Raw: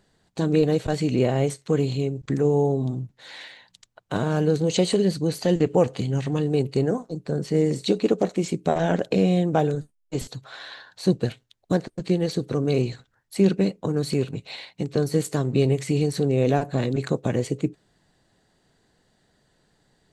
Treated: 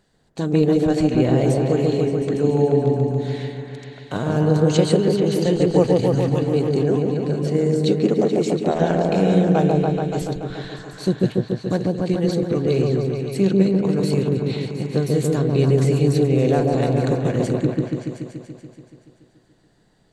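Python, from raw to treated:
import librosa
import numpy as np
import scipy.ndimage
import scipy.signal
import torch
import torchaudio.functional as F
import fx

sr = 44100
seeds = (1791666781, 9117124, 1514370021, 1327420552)

y = fx.echo_opening(x, sr, ms=143, hz=750, octaves=1, feedback_pct=70, wet_db=0)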